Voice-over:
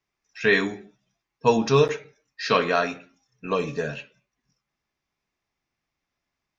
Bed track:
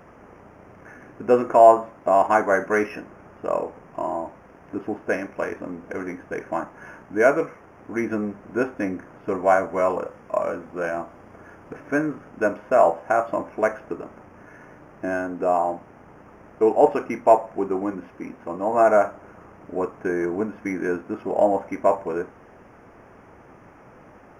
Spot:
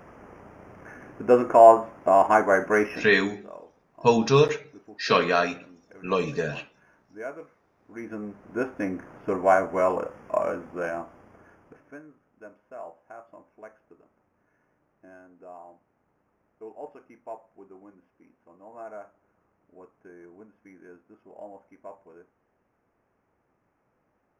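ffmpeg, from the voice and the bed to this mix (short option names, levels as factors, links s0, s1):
-filter_complex "[0:a]adelay=2600,volume=1[s0];[1:a]volume=7.08,afade=t=out:st=3.09:d=0.27:silence=0.11885,afade=t=in:st=7.8:d=1.29:silence=0.133352,afade=t=out:st=10.5:d=1.5:silence=0.0749894[s1];[s0][s1]amix=inputs=2:normalize=0"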